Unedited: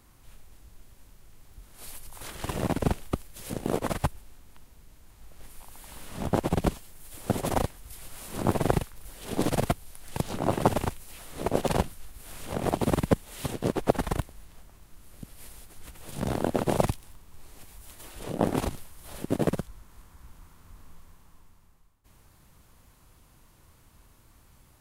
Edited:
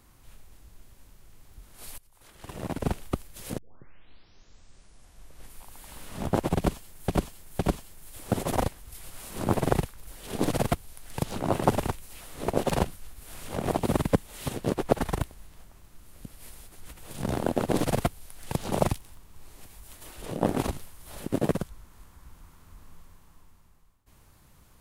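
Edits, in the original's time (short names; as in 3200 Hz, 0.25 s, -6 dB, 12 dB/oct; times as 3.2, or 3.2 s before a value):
1.98–3.03 fade in quadratic, from -17.5 dB
3.58 tape start 1.94 s
6.57–7.08 loop, 3 plays
9.37–10.37 copy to 16.7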